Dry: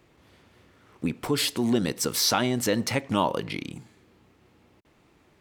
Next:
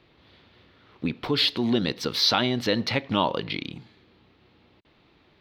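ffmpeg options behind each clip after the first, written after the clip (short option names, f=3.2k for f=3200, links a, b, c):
-af "highshelf=f=5.7k:t=q:w=3:g=-13.5"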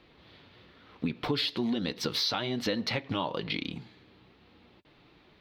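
-af "acompressor=threshold=-28dB:ratio=5,flanger=delay=3.8:depth=3.3:regen=-48:speed=1.1:shape=sinusoidal,volume=4.5dB"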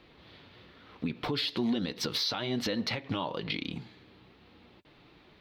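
-af "alimiter=limit=-23dB:level=0:latency=1:release=102,volume=1.5dB"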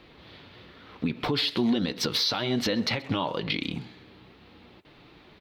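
-filter_complex "[0:a]asplit=2[a][b];[b]adelay=130,highpass=300,lowpass=3.4k,asoftclip=type=hard:threshold=-31dB,volume=-17dB[c];[a][c]amix=inputs=2:normalize=0,volume=5dB"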